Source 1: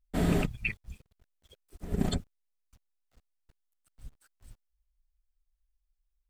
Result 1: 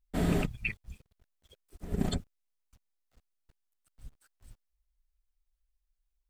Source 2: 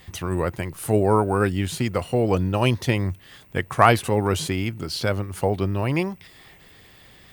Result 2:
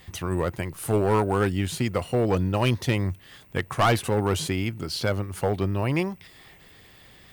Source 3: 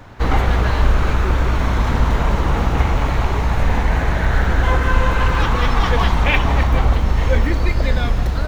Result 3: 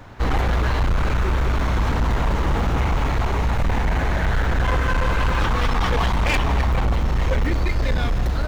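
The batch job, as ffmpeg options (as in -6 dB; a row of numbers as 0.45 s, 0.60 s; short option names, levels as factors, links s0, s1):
-af "asoftclip=type=hard:threshold=0.2,volume=0.841"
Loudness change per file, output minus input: -1.5 LU, -2.5 LU, -3.5 LU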